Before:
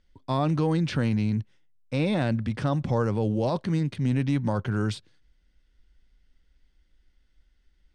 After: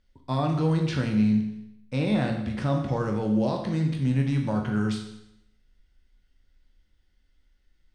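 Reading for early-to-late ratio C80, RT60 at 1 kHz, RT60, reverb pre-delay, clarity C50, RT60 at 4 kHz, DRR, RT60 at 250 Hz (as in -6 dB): 9.0 dB, 0.80 s, 0.80 s, 14 ms, 6.5 dB, 0.80 s, 2.0 dB, 0.85 s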